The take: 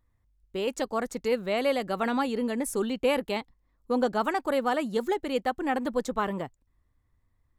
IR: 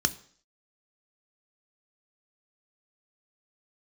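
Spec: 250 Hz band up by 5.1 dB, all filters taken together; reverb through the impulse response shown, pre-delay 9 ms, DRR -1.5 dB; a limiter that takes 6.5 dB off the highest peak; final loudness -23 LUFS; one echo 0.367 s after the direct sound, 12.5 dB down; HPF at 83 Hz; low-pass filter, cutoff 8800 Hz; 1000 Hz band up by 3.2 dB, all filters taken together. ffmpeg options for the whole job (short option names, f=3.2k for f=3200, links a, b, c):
-filter_complex "[0:a]highpass=83,lowpass=8.8k,equalizer=f=250:t=o:g=5.5,equalizer=f=1k:t=o:g=4,alimiter=limit=-17.5dB:level=0:latency=1,aecho=1:1:367:0.237,asplit=2[a][b];[1:a]atrim=start_sample=2205,adelay=9[c];[b][c]afir=irnorm=-1:irlink=0,volume=-7dB[d];[a][d]amix=inputs=2:normalize=0,volume=0.5dB"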